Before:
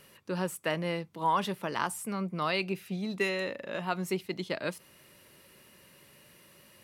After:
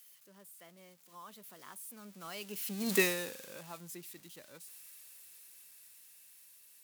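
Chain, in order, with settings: zero-crossing glitches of -24 dBFS; Doppler pass-by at 2.95 s, 25 m/s, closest 2 m; trim +3 dB

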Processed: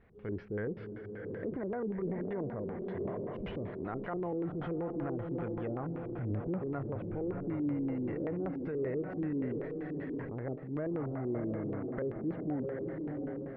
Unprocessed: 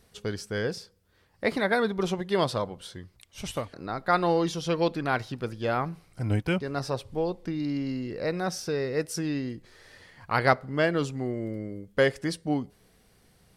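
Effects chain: low-pass that closes with the level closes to 840 Hz, closed at -23.5 dBFS; on a send: echo that smears into a reverb 685 ms, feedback 45%, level -9 dB; on the sum: compression, threshold -31 dBFS, peak gain reduction 12.5 dB; LFO low-pass square 5.2 Hz 370–2100 Hz; transient shaper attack -5 dB, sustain +6 dB; tape spacing loss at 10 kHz 35 dB; trim -1.5 dB

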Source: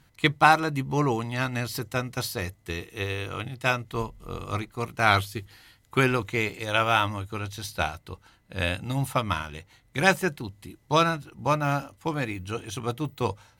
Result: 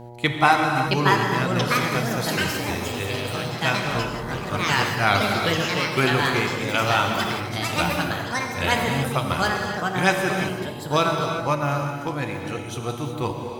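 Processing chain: mains buzz 120 Hz, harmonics 8, -41 dBFS -3 dB/octave; gated-style reverb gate 400 ms flat, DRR 2.5 dB; ever faster or slower copies 721 ms, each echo +4 st, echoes 3

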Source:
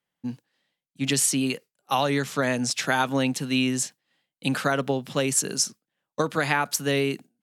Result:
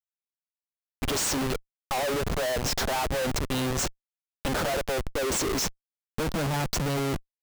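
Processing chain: high-pass sweep 590 Hz -> 82 Hz, 4.84–7.29 s; touch-sensitive phaser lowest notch 240 Hz, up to 2.3 kHz, full sweep at -27.5 dBFS; Schmitt trigger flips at -33 dBFS

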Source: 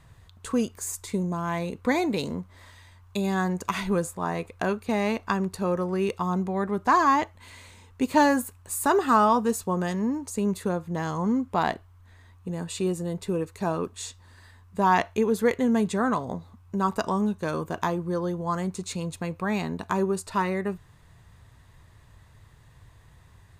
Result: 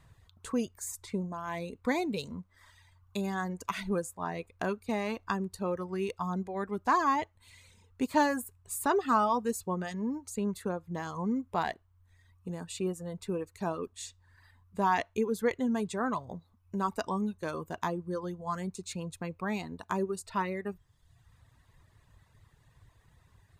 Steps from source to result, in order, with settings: reverb removal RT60 1 s; trim -5.5 dB

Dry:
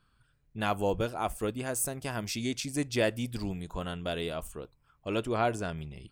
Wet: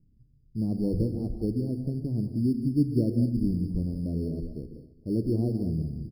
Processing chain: inverse Chebyshev low-pass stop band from 1.9 kHz, stop band 80 dB; hum notches 50/100 Hz; in parallel at -9.5 dB: sample-and-hold 9×; on the sum: feedback delay 266 ms, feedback 43%, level -20 dB; gated-style reverb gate 220 ms rising, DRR 6.5 dB; trim +6.5 dB

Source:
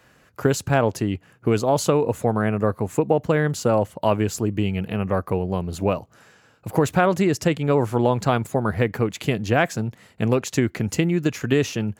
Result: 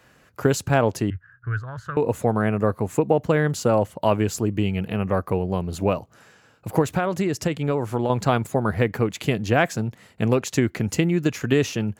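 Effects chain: 1.10–1.97 s: FFT filter 120 Hz 0 dB, 210 Hz -25 dB, 830 Hz -22 dB, 1.6 kHz +10 dB, 2.3 kHz -19 dB, 4.8 kHz -23 dB, 9.9 kHz -30 dB; 6.81–8.10 s: compression, threshold -19 dBFS, peak gain reduction 6.5 dB

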